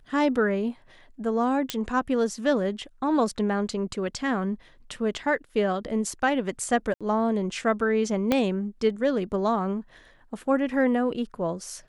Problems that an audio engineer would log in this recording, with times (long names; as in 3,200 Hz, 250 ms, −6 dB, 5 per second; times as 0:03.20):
0:01.70: click −10 dBFS
0:06.94–0:07.01: drop-out 66 ms
0:08.32: click −9 dBFS